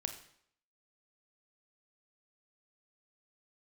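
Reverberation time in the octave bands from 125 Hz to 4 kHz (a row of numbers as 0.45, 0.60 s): 0.60, 0.65, 0.65, 0.65, 0.65, 0.60 s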